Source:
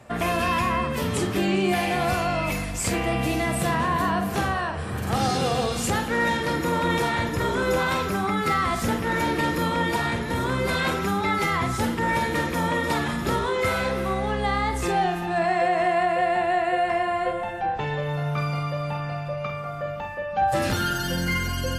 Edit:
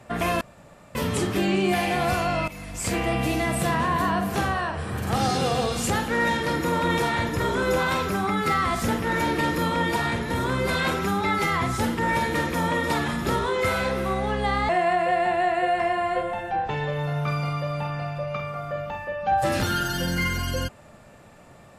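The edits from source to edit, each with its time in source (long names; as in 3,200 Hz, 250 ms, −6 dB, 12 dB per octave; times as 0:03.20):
0:00.41–0:00.95: fill with room tone
0:02.48–0:02.98: fade in, from −17.5 dB
0:14.69–0:15.79: remove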